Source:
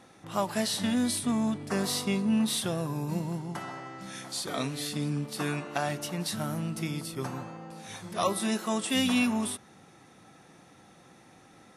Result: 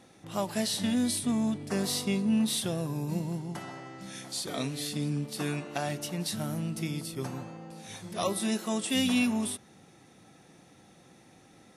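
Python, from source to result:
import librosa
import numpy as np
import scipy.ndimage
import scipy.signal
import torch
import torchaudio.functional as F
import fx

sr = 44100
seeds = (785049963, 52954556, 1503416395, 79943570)

y = fx.peak_eq(x, sr, hz=1200.0, db=-6.0, octaves=1.3)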